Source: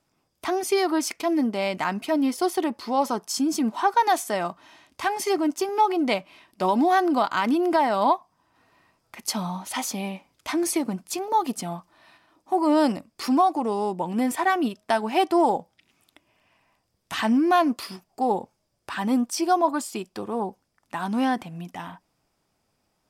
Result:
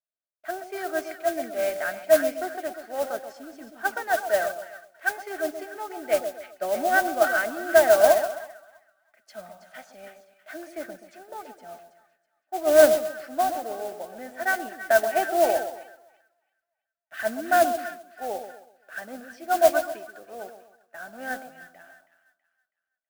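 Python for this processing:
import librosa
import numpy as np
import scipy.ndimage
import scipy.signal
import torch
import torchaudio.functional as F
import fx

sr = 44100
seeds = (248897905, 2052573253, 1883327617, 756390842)

y = fx.double_bandpass(x, sr, hz=990.0, octaves=1.3)
y = fx.echo_split(y, sr, split_hz=1100.0, low_ms=130, high_ms=325, feedback_pct=52, wet_db=-7.0)
y = fx.mod_noise(y, sr, seeds[0], snr_db=15)
y = fx.band_widen(y, sr, depth_pct=70)
y = y * librosa.db_to_amplitude(5.5)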